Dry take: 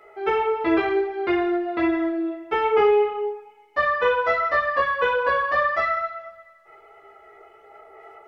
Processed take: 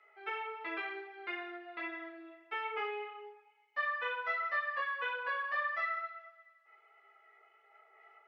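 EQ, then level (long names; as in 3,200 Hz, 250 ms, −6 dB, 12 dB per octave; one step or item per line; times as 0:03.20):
resonant band-pass 2,300 Hz, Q 1.1
−9.0 dB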